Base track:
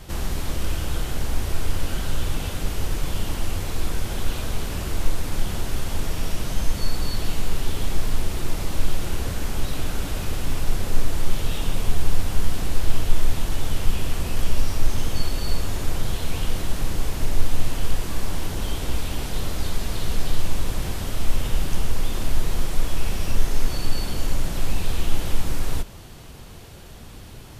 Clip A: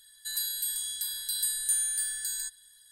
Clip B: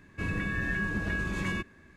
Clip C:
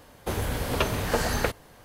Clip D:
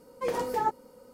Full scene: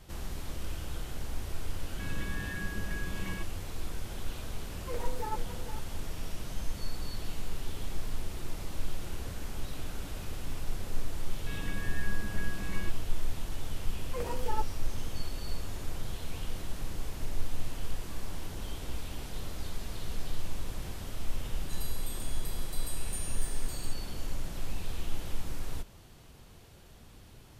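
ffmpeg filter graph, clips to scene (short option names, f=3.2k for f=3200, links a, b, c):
-filter_complex "[2:a]asplit=2[a][b];[4:a]asplit=2[c][d];[0:a]volume=-12dB[e];[c]asplit=2[f][g];[g]adelay=460.6,volume=-9dB,highshelf=f=4k:g=-10.4[h];[f][h]amix=inputs=2:normalize=0[i];[a]atrim=end=1.96,asetpts=PTS-STARTPTS,volume=-9dB,afade=t=in:d=0.004:c=hsin,afade=t=out:st=1.956:d=0.004:c=hsin,adelay=1810[j];[i]atrim=end=1.13,asetpts=PTS-STARTPTS,volume=-10dB,afade=t=in:d=0.004:c=hsin,afade=t=out:st=1.126:d=0.004:c=hsin,adelay=4660[k];[b]atrim=end=1.96,asetpts=PTS-STARTPTS,volume=-9.5dB,afade=t=in:d=0.004:c=hsin,afade=t=out:st=1.956:d=0.004:c=hsin,adelay=11280[l];[d]atrim=end=1.13,asetpts=PTS-STARTPTS,volume=-8dB,afade=t=in:d=0.004:c=hsin,afade=t=out:st=1.126:d=0.004:c=hsin,adelay=13920[m];[1:a]atrim=end=2.91,asetpts=PTS-STARTPTS,volume=-14dB,afade=t=in:d=0.004:c=hsin,afade=t=out:st=2.906:d=0.004:c=hsin,adelay=21440[n];[e][j][k][l][m][n]amix=inputs=6:normalize=0"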